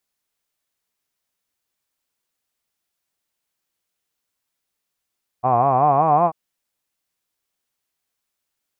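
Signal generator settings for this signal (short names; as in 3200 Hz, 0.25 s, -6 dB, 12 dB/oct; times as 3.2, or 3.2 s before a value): formant-synthesis vowel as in hod, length 0.89 s, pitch 119 Hz, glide +6 st, vibrato depth 1.3 st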